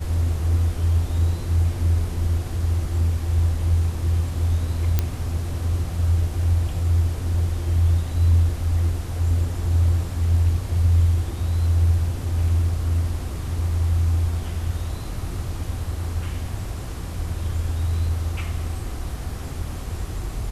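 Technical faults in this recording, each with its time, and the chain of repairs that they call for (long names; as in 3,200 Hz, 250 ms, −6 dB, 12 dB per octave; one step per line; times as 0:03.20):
0:04.99: click −7 dBFS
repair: click removal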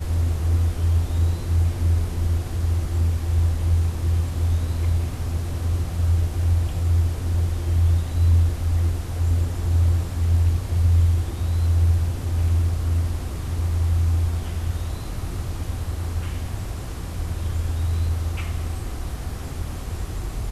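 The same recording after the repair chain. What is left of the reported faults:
none of them is left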